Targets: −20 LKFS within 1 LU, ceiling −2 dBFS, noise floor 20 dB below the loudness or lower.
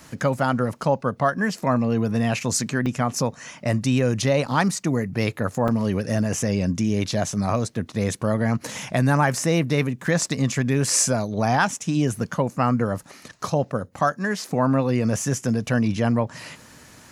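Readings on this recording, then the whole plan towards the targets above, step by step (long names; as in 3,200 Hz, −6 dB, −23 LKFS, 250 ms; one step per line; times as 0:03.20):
number of dropouts 4; longest dropout 3.0 ms; integrated loudness −23.0 LKFS; sample peak −7.0 dBFS; target loudness −20.0 LKFS
→ repair the gap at 0:02.86/0:04.46/0:05.68/0:10.06, 3 ms
level +3 dB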